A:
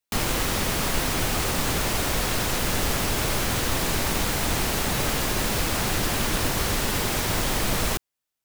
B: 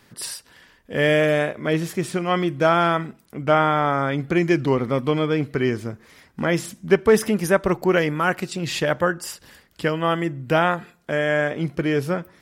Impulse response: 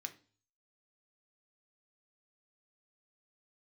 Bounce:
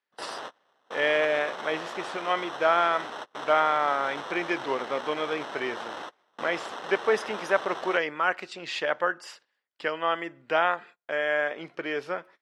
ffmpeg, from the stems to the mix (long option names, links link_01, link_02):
-filter_complex "[0:a]acrusher=samples=19:mix=1:aa=0.000001,volume=-7.5dB[link_01];[1:a]agate=range=-25dB:threshold=-42dB:ratio=16:detection=peak,volume=-3dB,asplit=2[link_02][link_03];[link_03]apad=whole_len=376845[link_04];[link_01][link_04]sidechaingate=range=-32dB:threshold=-50dB:ratio=16:detection=peak[link_05];[link_05][link_02]amix=inputs=2:normalize=0,highpass=570,lowpass=4000"